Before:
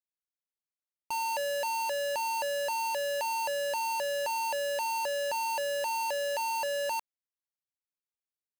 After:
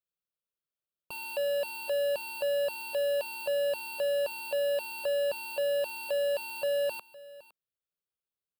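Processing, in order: peaking EQ 220 Hz +13.5 dB 1.6 oct; static phaser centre 1.3 kHz, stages 8; on a send: delay 511 ms -19 dB

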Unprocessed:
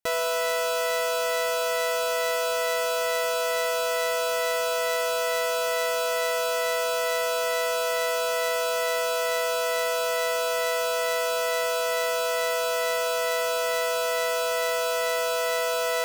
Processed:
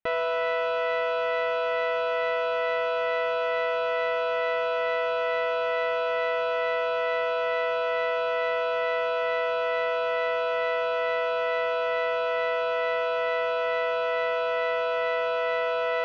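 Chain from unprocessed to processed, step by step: low-pass 2.9 kHz 24 dB/octave

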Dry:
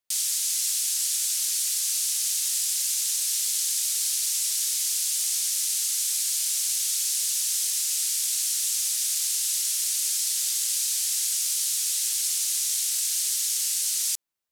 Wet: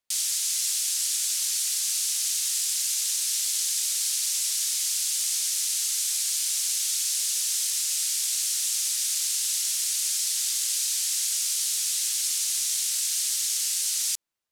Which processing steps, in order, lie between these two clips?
treble shelf 11 kHz -7 dB; trim +1.5 dB

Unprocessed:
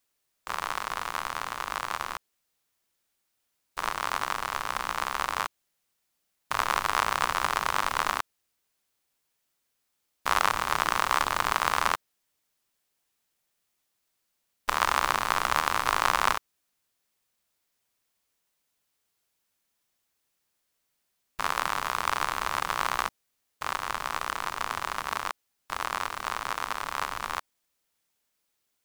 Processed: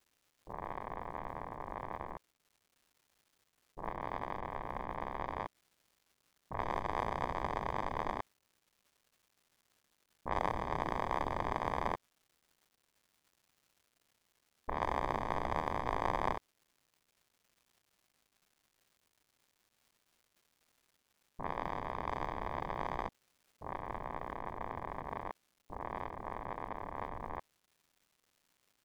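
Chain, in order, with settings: level-controlled noise filter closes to 390 Hz, open at -21.5 dBFS; boxcar filter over 32 samples; crackle 380 per s -60 dBFS; trim +1 dB

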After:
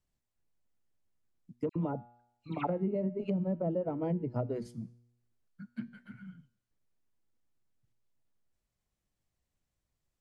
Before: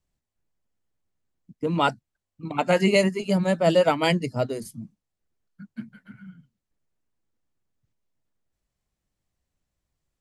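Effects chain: low-pass that closes with the level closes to 430 Hz, closed at -20 dBFS; feedback comb 120 Hz, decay 0.8 s, harmonics all, mix 50%; 1.69–2.67 s: phase dispersion lows, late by 66 ms, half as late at 2.1 kHz; compression, threshold -30 dBFS, peak gain reduction 8 dB; trim +1.5 dB

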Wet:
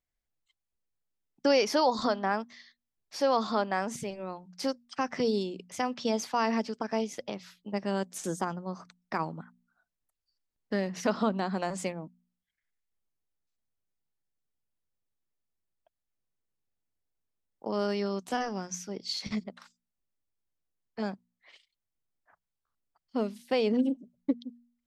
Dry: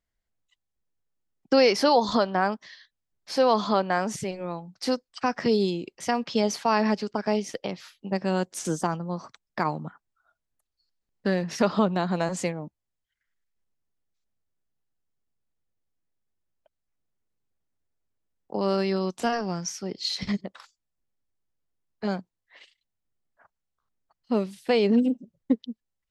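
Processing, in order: de-hum 56.87 Hz, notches 4; tape speed +5%; trim -5 dB

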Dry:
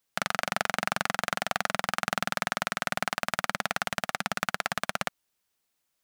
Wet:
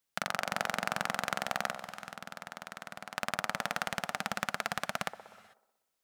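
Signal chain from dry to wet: 1.73–3.17 s: level held to a coarse grid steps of 20 dB; feedback echo behind a band-pass 62 ms, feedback 64%, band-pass 490 Hz, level -8 dB; on a send at -21 dB: reverberation, pre-delay 3 ms; on the sum: trim -4.5 dB

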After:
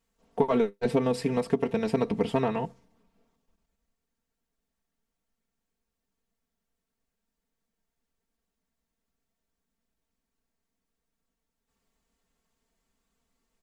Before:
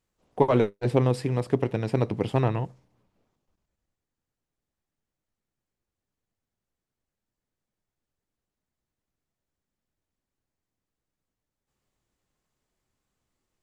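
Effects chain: comb 4.4 ms, depth 88%; compression 6:1, threshold -20 dBFS, peak gain reduction 9 dB

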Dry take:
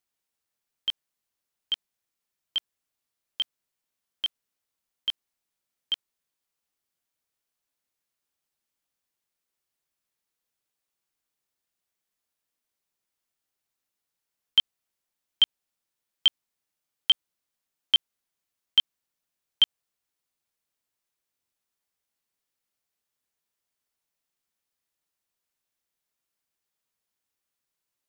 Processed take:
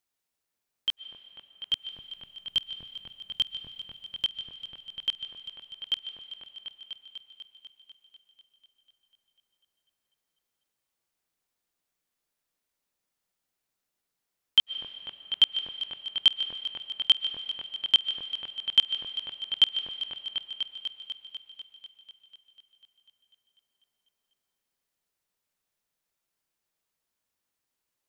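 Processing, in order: 1.73–4.25 s: tone controls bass +14 dB, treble +6 dB; delay with an opening low-pass 247 ms, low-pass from 750 Hz, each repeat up 1 oct, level -3 dB; reverberation RT60 2.5 s, pre-delay 90 ms, DRR 11 dB

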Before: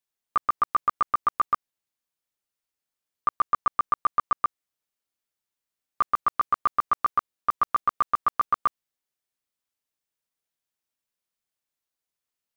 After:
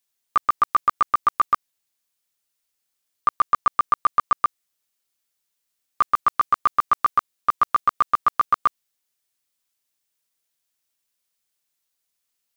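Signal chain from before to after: treble shelf 2.3 kHz +8.5 dB; trim +2.5 dB

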